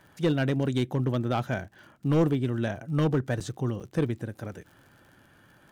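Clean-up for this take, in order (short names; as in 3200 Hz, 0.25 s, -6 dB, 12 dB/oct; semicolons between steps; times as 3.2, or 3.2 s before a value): clip repair -17 dBFS; de-click; interpolate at 3.4/3.8, 6.1 ms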